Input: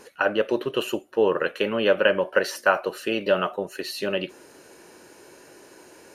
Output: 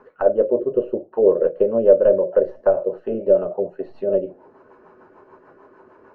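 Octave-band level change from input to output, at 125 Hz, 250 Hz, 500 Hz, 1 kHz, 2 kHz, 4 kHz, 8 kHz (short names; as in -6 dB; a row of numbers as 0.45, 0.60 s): +0.5 dB, +2.0 dB, +7.0 dB, -5.5 dB, under -15 dB, under -30 dB, under -40 dB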